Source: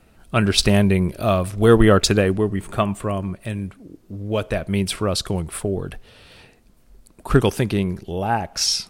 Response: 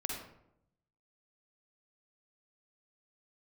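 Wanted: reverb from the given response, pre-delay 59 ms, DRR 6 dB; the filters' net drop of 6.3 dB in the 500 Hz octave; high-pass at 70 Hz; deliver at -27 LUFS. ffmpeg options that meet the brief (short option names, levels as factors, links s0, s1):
-filter_complex "[0:a]highpass=70,equalizer=f=500:t=o:g=-8,asplit=2[s0][s1];[1:a]atrim=start_sample=2205,adelay=59[s2];[s1][s2]afir=irnorm=-1:irlink=0,volume=0.398[s3];[s0][s3]amix=inputs=2:normalize=0,volume=0.501"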